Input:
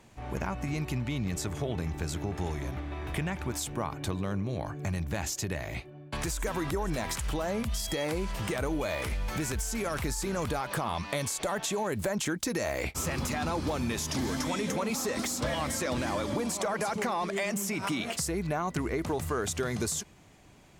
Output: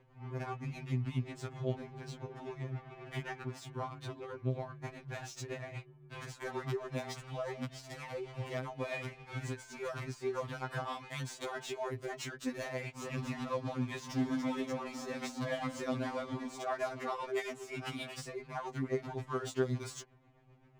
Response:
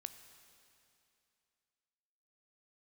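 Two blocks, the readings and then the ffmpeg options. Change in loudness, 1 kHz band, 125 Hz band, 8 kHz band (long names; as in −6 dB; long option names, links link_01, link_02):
−7.5 dB, −7.5 dB, −6.0 dB, −16.5 dB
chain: -af "adynamicsmooth=sensitivity=6.5:basefreq=1900,tremolo=f=7.6:d=0.55,afftfilt=real='re*2.45*eq(mod(b,6),0)':imag='im*2.45*eq(mod(b,6),0)':win_size=2048:overlap=0.75,volume=-1.5dB"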